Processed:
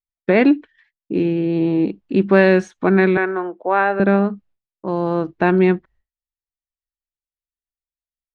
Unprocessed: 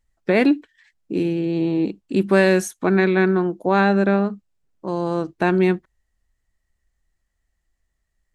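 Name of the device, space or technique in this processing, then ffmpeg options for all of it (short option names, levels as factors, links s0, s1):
hearing-loss simulation: -filter_complex "[0:a]lowpass=7800,asettb=1/sr,asplit=3[s0][s1][s2];[s0]atrim=end=3.174[s3];[s1]atrim=start=3.17:end=4,asetpts=PTS-STARTPTS,afade=t=in:d=0.004:c=qsin,afade=t=out:st=0.826:d=0.004:c=qsin,acrossover=split=390 3200:gain=0.0708 1 0.0708[s4][s5][s6];[s4][s5][s6]amix=inputs=3:normalize=0[s7];[s2]atrim=start=3.996[s8];[s3][s7]acrossfade=d=0.004:c1=hsin:c2=qsin[s9];[s9][s8]acrossfade=d=0.004:c1=qsin:c2=hsin,lowpass=3100,agate=range=0.0224:threshold=0.00447:ratio=3:detection=peak,volume=1.41"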